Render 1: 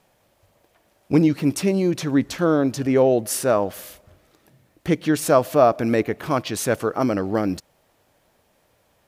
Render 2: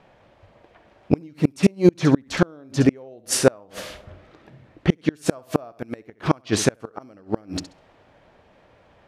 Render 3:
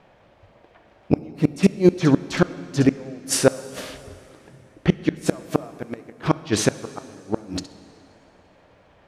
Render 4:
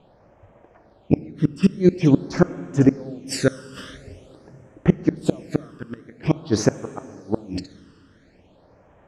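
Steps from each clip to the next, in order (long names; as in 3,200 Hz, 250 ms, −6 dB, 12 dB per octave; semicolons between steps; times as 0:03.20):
low-pass that shuts in the quiet parts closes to 2,800 Hz, open at −14.5 dBFS; flutter between parallel walls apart 11.4 metres, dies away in 0.28 s; gate with flip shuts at −12 dBFS, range −34 dB; level +8.5 dB
dense smooth reverb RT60 2.8 s, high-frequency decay 0.9×, DRR 15 dB
all-pass phaser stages 12, 0.47 Hz, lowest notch 700–4,300 Hz; high-frequency loss of the air 57 metres; level +1 dB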